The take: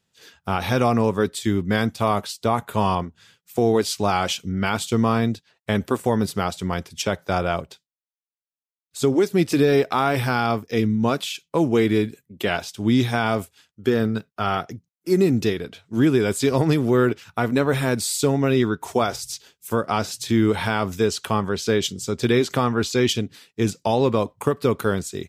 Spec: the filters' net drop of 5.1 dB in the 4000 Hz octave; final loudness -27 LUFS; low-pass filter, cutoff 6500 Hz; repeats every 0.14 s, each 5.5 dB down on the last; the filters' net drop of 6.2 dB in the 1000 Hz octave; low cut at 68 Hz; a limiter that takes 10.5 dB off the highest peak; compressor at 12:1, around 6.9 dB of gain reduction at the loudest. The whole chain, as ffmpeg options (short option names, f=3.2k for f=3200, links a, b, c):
-af "highpass=68,lowpass=6.5k,equalizer=f=1k:t=o:g=-8.5,equalizer=f=4k:t=o:g=-5.5,acompressor=threshold=-21dB:ratio=12,alimiter=limit=-21dB:level=0:latency=1,aecho=1:1:140|280|420|560|700|840|980:0.531|0.281|0.149|0.079|0.0419|0.0222|0.0118,volume=4dB"